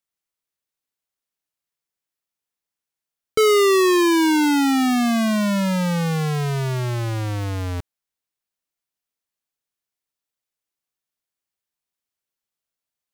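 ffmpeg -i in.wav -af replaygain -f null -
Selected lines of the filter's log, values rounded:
track_gain = +0.9 dB
track_peak = 0.140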